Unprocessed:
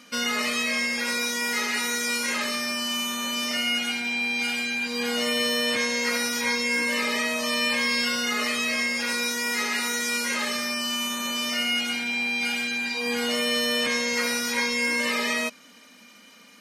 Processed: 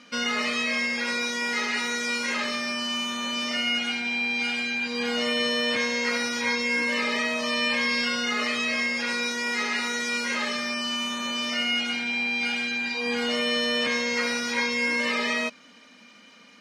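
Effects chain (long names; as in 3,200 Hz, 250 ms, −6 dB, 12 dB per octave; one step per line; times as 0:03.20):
low-pass filter 5,200 Hz 12 dB per octave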